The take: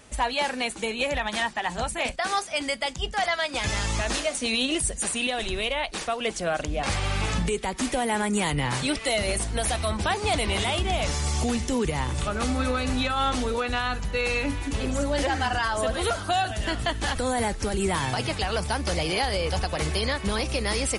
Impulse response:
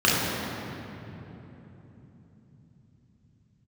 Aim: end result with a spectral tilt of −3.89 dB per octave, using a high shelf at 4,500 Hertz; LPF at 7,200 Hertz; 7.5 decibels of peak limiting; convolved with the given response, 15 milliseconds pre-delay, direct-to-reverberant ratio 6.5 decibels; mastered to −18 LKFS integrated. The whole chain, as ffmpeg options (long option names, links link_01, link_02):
-filter_complex "[0:a]lowpass=7200,highshelf=frequency=4500:gain=6.5,alimiter=limit=-20dB:level=0:latency=1,asplit=2[link_01][link_02];[1:a]atrim=start_sample=2205,adelay=15[link_03];[link_02][link_03]afir=irnorm=-1:irlink=0,volume=-26.5dB[link_04];[link_01][link_04]amix=inputs=2:normalize=0,volume=9.5dB"